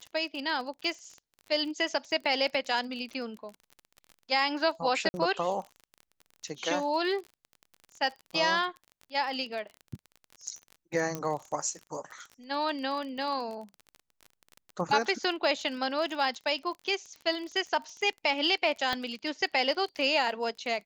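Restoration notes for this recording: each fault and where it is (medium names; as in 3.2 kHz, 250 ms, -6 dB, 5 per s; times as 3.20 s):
crackle 32 per s -37 dBFS
5.09–5.14 s: dropout 50 ms
11.15 s: pop -18 dBFS
18.93 s: pop -16 dBFS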